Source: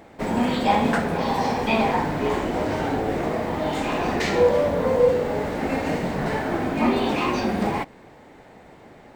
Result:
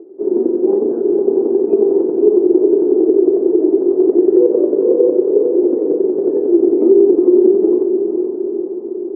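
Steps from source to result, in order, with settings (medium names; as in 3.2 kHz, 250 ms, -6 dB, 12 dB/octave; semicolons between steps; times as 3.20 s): formants flattened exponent 0.6; square tremolo 11 Hz, depth 60%, duty 10%; in parallel at -9 dB: saturation -18 dBFS, distortion -14 dB; on the sum: Butterworth band-pass 370 Hz, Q 5.3; echo that smears into a reverb 480 ms, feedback 64%, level -7 dB; on a send at -21 dB: reverberation RT60 1.2 s, pre-delay 108 ms; on the sum: loudest bins only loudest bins 64; loudness maximiser +28 dB; trim -1 dB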